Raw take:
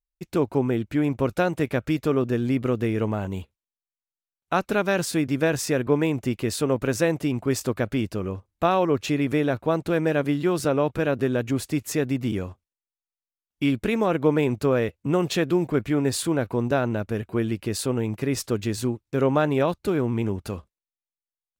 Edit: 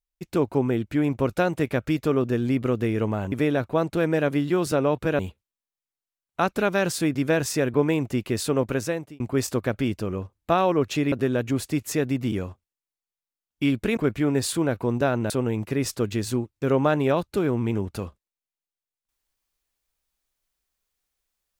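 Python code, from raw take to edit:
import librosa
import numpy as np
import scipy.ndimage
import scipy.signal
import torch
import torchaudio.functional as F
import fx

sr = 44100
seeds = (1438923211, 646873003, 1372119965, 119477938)

y = fx.edit(x, sr, fx.fade_out_span(start_s=6.8, length_s=0.53),
    fx.move(start_s=9.25, length_s=1.87, to_s=3.32),
    fx.cut(start_s=13.97, length_s=1.7),
    fx.cut(start_s=17.0, length_s=0.81), tone=tone)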